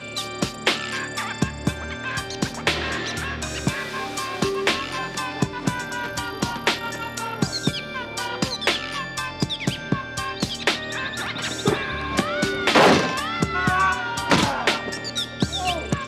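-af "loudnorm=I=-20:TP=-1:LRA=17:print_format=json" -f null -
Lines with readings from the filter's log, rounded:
"input_i" : "-23.6",
"input_tp" : "-3.2",
"input_lra" : "4.9",
"input_thresh" : "-33.6",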